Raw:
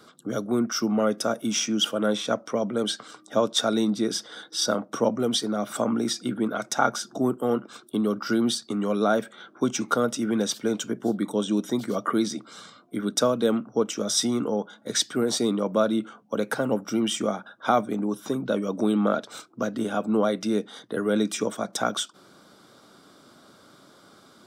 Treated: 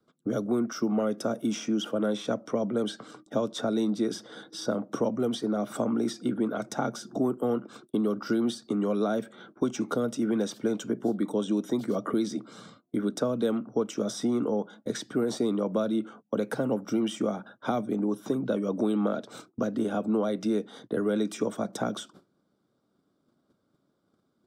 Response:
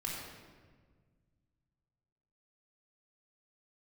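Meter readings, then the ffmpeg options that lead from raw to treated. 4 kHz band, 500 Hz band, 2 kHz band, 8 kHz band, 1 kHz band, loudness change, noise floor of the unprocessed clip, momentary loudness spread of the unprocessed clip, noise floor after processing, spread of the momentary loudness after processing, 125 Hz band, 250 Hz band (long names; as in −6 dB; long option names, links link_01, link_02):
−11.5 dB, −3.0 dB, −8.0 dB, −12.0 dB, −7.0 dB, −3.5 dB, −55 dBFS, 7 LU, −74 dBFS, 6 LU, −2.0 dB, −2.0 dB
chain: -filter_complex "[0:a]acrossover=split=290|740|2100[link_01][link_02][link_03][link_04];[link_01]acompressor=threshold=-40dB:ratio=4[link_05];[link_02]acompressor=threshold=-31dB:ratio=4[link_06];[link_03]acompressor=threshold=-34dB:ratio=4[link_07];[link_04]acompressor=threshold=-31dB:ratio=4[link_08];[link_05][link_06][link_07][link_08]amix=inputs=4:normalize=0,agate=range=-22dB:threshold=-49dB:ratio=16:detection=peak,tiltshelf=frequency=660:gain=7.5"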